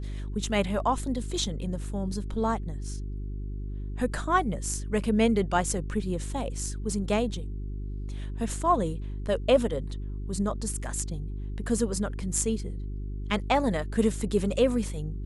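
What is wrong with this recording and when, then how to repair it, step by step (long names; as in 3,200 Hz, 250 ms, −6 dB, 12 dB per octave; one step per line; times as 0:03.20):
mains hum 50 Hz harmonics 8 −34 dBFS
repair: hum removal 50 Hz, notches 8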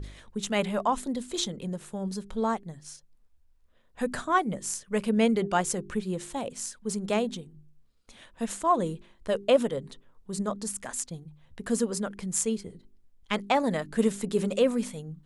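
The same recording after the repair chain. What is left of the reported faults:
none of them is left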